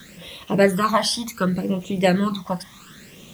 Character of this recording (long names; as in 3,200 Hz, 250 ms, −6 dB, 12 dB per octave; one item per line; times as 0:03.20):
phaser sweep stages 12, 0.68 Hz, lowest notch 420–1,600 Hz
a quantiser's noise floor 10 bits, dither triangular